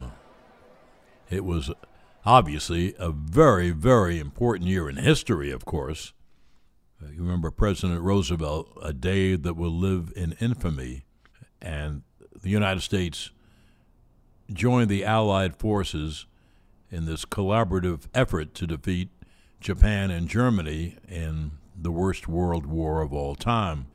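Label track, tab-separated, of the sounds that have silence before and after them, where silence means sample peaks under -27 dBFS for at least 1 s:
1.320000	6.030000	sound
7.200000	13.240000	sound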